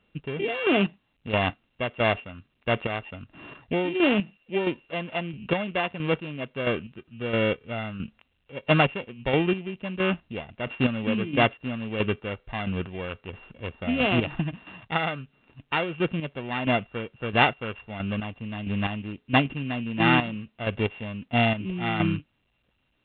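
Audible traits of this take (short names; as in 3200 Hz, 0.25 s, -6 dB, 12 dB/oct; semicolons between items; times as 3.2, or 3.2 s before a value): a buzz of ramps at a fixed pitch in blocks of 16 samples; chopped level 1.5 Hz, depth 60%, duty 30%; A-law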